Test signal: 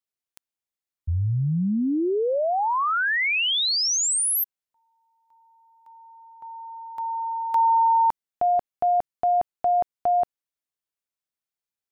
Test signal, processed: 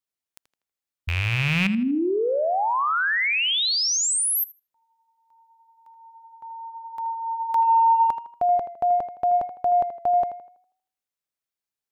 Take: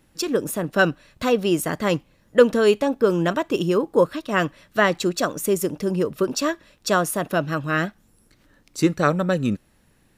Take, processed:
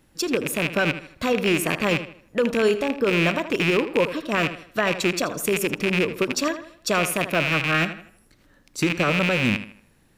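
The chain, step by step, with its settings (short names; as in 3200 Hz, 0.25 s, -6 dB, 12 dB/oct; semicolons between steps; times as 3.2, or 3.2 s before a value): rattling part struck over -30 dBFS, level -11 dBFS; limiter -11.5 dBFS; on a send: tape echo 80 ms, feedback 40%, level -10 dB, low-pass 3900 Hz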